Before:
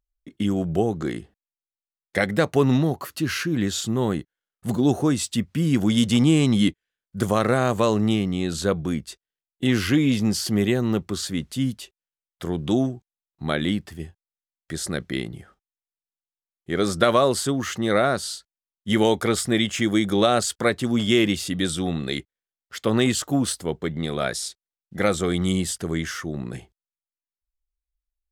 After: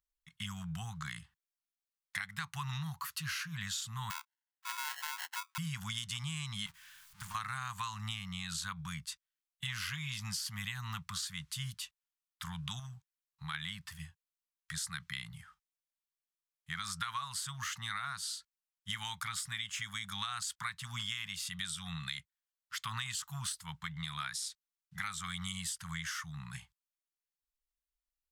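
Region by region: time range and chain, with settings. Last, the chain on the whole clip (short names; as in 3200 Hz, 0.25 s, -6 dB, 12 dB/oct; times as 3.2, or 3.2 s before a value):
4.1–5.58 comb 1.3 ms, depth 90% + sample-rate reducer 1200 Hz + Chebyshev high-pass 260 Hz, order 8
6.66–7.35 zero-crossing step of -21 dBFS + gate -21 dBFS, range -25 dB + compressor 12:1, threshold -28 dBFS
12.79–13.54 compressor 2.5:1, threshold -27 dBFS + short-mantissa float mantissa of 8-bit
whole clip: elliptic band-stop 160–1000 Hz, stop band 40 dB; low shelf 270 Hz -10 dB; compressor, threshold -34 dBFS; gain -2 dB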